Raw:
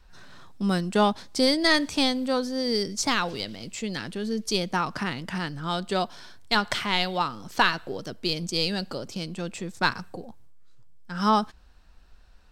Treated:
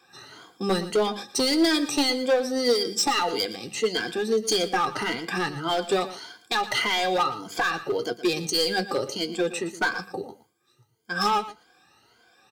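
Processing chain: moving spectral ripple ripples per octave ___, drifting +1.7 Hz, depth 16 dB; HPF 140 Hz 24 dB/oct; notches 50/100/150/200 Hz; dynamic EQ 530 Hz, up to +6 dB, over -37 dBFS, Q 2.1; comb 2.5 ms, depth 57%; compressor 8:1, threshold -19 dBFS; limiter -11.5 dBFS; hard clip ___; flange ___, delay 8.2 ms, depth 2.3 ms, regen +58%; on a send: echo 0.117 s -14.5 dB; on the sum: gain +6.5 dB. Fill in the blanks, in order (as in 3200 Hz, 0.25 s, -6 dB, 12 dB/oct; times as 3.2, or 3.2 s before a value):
1.8, -20.5 dBFS, 0.74 Hz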